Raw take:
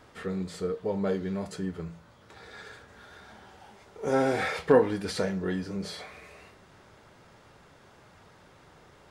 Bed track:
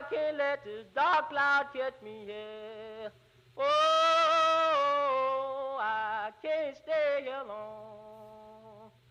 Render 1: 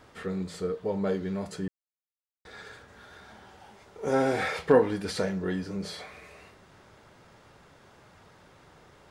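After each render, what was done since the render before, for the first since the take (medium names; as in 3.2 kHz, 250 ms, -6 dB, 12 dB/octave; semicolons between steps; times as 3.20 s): 1.68–2.45 s: mute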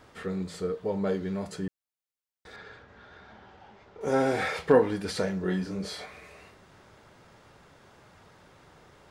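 2.56–4.01 s: distance through air 160 m; 5.42–6.06 s: doubling 27 ms -5 dB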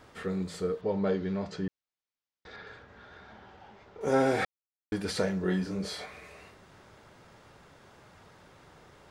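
0.81–2.67 s: low-pass 5.7 kHz 24 dB/octave; 4.45–4.92 s: mute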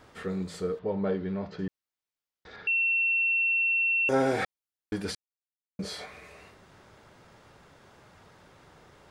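0.79–1.59 s: distance through air 180 m; 2.67–4.09 s: bleep 2.71 kHz -22.5 dBFS; 5.15–5.79 s: mute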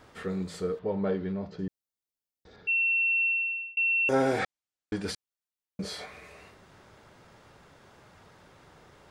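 1.31–2.67 s: peaking EQ 1.8 kHz -6 dB -> -13.5 dB 2.5 oct; 3.25–3.77 s: fade out; 4.39–5.05 s: steep low-pass 8.9 kHz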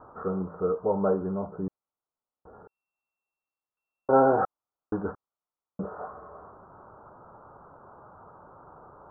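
steep low-pass 1.4 kHz 72 dB/octave; peaking EQ 1 kHz +9.5 dB 2.2 oct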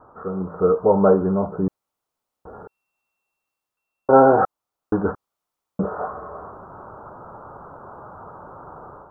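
level rider gain up to 10.5 dB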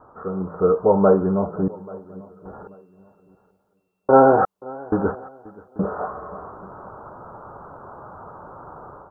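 feedback delay 836 ms, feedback 28%, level -22 dB; modulated delay 530 ms, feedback 33%, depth 57 cents, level -22 dB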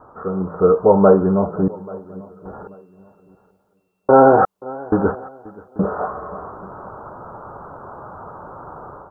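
trim +4 dB; peak limiter -1 dBFS, peak gain reduction 3 dB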